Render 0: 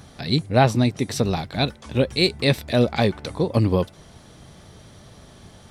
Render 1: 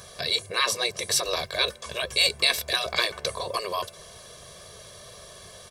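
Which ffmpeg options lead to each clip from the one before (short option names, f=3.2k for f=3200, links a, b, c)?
-af "afftfilt=real='re*lt(hypot(re,im),0.282)':imag='im*lt(hypot(re,im),0.282)':win_size=1024:overlap=0.75,bass=f=250:g=-12,treble=f=4k:g=7,aecho=1:1:1.8:0.95"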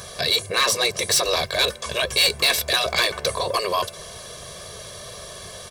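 -af "asoftclip=type=tanh:threshold=-21dB,volume=8dB"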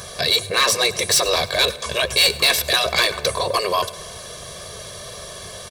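-af "aecho=1:1:103|206|309|412:0.106|0.0561|0.0298|0.0158,volume=2.5dB"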